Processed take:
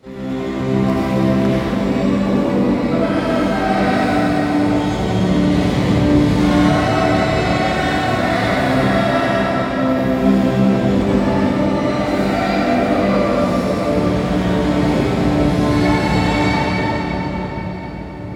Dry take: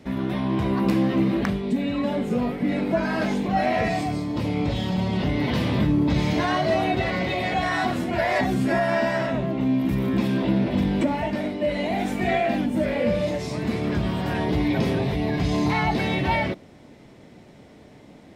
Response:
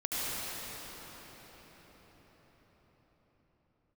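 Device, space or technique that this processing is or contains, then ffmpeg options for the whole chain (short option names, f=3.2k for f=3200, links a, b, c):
shimmer-style reverb: -filter_complex "[0:a]asettb=1/sr,asplit=3[a][b][c];[a]atrim=end=9.384[d];[b]atrim=start=9.38:end=9.83,asetpts=PTS-STARTPTS,afade=t=in:d=0.004:c=qsin,afade=t=out:st=0.446:d=0.004:c=qsin,highpass=320[e];[c]atrim=start=9.826[f];[d][e]acrossfade=d=0.004:c1=hsin:c2=qsin[g];[g][f]acrossfade=d=0.004:c1=qsin:c2=hsin,asplit=2[h][i];[i]asetrate=88200,aresample=44100,atempo=0.5,volume=-7dB[j];[h][j]amix=inputs=2:normalize=0[k];[1:a]atrim=start_sample=2205[l];[k][l]afir=irnorm=-1:irlink=0,volume=-3dB"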